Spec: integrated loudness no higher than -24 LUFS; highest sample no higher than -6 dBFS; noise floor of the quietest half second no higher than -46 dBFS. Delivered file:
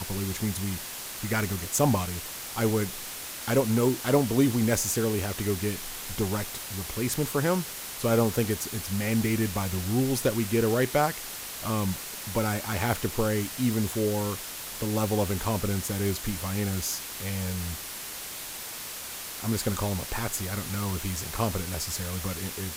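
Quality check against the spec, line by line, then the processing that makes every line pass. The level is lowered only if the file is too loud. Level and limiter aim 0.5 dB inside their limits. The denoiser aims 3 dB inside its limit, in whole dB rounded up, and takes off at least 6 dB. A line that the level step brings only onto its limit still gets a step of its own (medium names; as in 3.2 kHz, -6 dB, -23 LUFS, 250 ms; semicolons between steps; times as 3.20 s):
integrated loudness -28.5 LUFS: pass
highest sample -9.0 dBFS: pass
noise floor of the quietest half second -38 dBFS: fail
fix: noise reduction 11 dB, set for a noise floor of -38 dBFS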